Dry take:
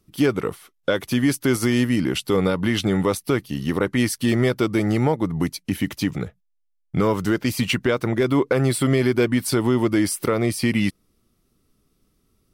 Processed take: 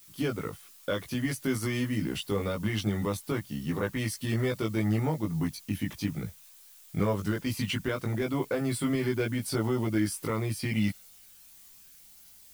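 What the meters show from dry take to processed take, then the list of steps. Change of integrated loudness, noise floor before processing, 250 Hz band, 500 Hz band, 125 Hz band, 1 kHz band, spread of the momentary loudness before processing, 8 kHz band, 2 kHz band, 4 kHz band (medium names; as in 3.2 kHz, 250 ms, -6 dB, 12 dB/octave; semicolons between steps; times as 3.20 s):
-9.0 dB, -69 dBFS, -9.5 dB, -10.5 dB, -6.5 dB, -9.5 dB, 7 LU, -9.0 dB, -9.0 dB, -9.0 dB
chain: added noise blue -44 dBFS; chorus voices 6, 0.19 Hz, delay 19 ms, depth 1 ms; trim -6.5 dB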